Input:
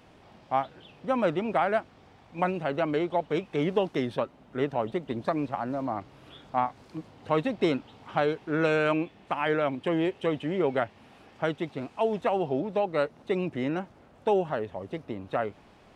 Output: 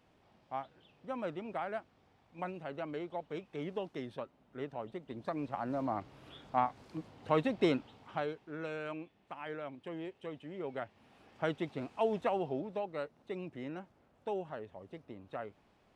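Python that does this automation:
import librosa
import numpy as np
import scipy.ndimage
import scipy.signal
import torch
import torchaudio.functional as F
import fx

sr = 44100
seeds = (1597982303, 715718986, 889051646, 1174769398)

y = fx.gain(x, sr, db=fx.line((5.05, -13.0), (5.78, -4.0), (7.77, -4.0), (8.57, -16.0), (10.51, -16.0), (11.52, -5.0), (12.17, -5.0), (13.03, -13.0)))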